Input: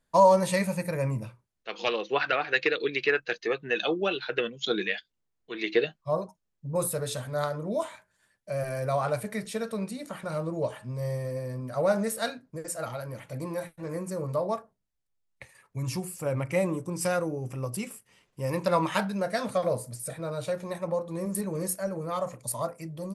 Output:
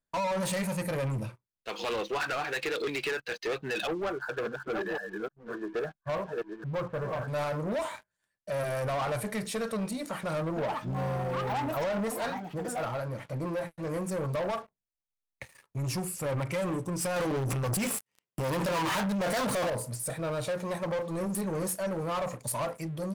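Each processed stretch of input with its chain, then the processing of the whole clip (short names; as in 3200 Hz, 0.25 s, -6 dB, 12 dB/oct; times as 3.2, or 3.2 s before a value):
3.87–7.28 reverse delay 0.554 s, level -6 dB + brick-wall FIR low-pass 1800 Hz + bell 280 Hz -5 dB 2.2 oct
10.45–13.71 high shelf 3700 Hz -10 dB + echoes that change speed 0.112 s, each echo +6 st, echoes 2, each echo -6 dB
17.16–19.7 sample leveller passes 5 + HPF 96 Hz
whole clip: dynamic EQ 940 Hz, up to +4 dB, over -42 dBFS, Q 1.3; limiter -19 dBFS; sample leveller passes 3; gain -7.5 dB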